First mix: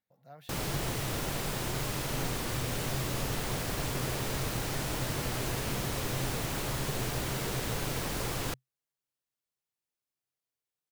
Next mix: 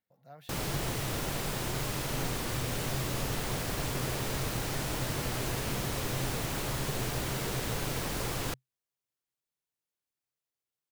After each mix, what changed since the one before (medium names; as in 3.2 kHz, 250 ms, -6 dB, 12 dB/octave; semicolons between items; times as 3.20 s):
no change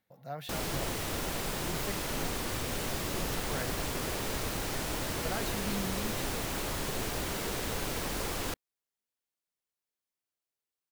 speech +11.0 dB; background: add peaking EQ 130 Hz -11.5 dB 0.31 oct